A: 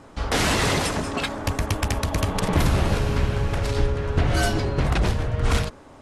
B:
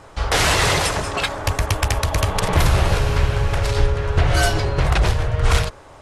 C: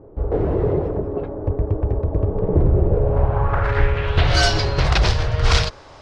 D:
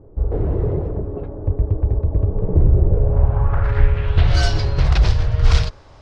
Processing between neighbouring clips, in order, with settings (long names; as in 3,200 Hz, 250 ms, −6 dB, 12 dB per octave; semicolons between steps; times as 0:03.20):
parametric band 240 Hz −14 dB 0.82 octaves; level +5.5 dB
low-pass filter sweep 400 Hz → 5,000 Hz, 0:02.88–0:04.37
low-shelf EQ 170 Hz +11.5 dB; level −6.5 dB